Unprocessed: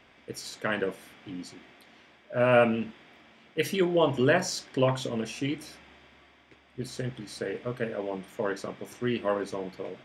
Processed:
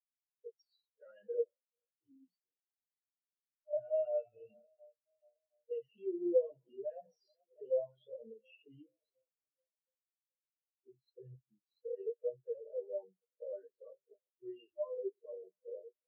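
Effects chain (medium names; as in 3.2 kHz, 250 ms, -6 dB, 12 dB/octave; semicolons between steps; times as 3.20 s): plain phase-vocoder stretch 1.6×; peaking EQ 2.8 kHz +6.5 dB 0.21 oct; shuffle delay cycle 718 ms, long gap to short 1.5:1, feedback 59%, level -21.5 dB; compression 3:1, threshold -34 dBFS, peak gain reduction 11.5 dB; hum notches 60/120/180/240/300/360 Hz; peak limiter -31 dBFS, peak gain reduction 7.5 dB; graphic EQ 125/250/1000/2000/8000 Hz -6/-12/-4/-5/-11 dB; spectral contrast expander 4:1; trim +14.5 dB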